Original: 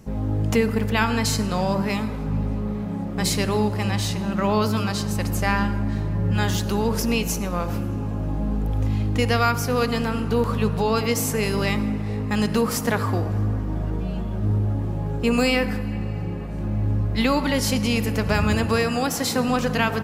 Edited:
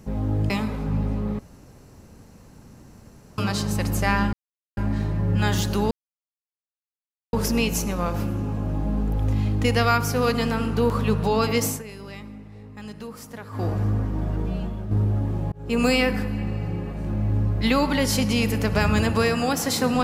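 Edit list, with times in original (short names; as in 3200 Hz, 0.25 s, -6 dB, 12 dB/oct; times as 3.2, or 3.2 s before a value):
0.5–1.9 cut
2.79–4.78 room tone
5.73 insert silence 0.44 s
6.87 insert silence 1.42 s
11.19–13.23 dip -16 dB, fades 0.18 s
14.09–14.45 fade out, to -7 dB
15.06–15.37 fade in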